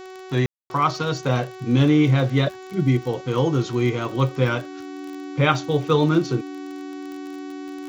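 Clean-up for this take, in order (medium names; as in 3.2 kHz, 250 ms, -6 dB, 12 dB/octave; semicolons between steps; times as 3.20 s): de-click; de-hum 374.6 Hz, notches 20; band-stop 290 Hz, Q 30; room tone fill 0.46–0.70 s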